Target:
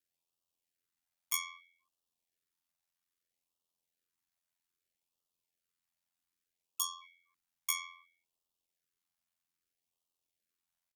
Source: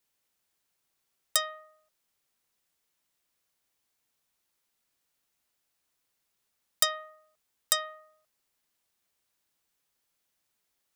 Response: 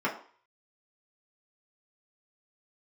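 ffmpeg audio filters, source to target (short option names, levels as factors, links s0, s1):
-af "asetrate=78577,aresample=44100,atempo=0.561231,aeval=exprs='val(0)*sin(2*PI*43*n/s)':c=same,afftfilt=real='re*(1-between(b*sr/1024,380*pow(1900/380,0.5+0.5*sin(2*PI*0.62*pts/sr))/1.41,380*pow(1900/380,0.5+0.5*sin(2*PI*0.62*pts/sr))*1.41))':imag='im*(1-between(b*sr/1024,380*pow(1900/380,0.5+0.5*sin(2*PI*0.62*pts/sr))/1.41,380*pow(1900/380,0.5+0.5*sin(2*PI*0.62*pts/sr))*1.41))':win_size=1024:overlap=0.75,volume=0.631"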